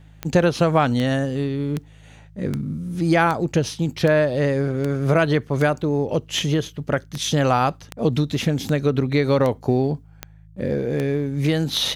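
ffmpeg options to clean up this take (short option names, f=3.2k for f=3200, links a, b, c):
-af "adeclick=t=4,bandreject=f=52.9:t=h:w=4,bandreject=f=105.8:t=h:w=4,bandreject=f=158.7:t=h:w=4"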